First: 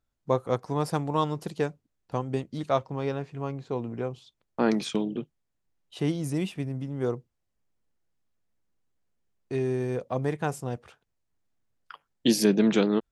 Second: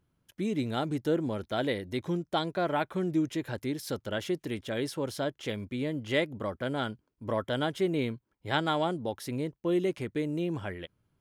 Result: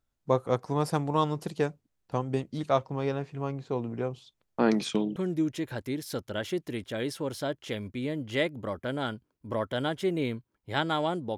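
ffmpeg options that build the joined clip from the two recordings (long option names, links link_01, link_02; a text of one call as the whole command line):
ffmpeg -i cue0.wav -i cue1.wav -filter_complex "[0:a]apad=whole_dur=11.37,atrim=end=11.37,atrim=end=5.162[link_01];[1:a]atrim=start=2.928:end=9.14[link_02];[link_01][link_02]acrossfade=duration=0.004:curve1=hsin:curve2=hsin" out.wav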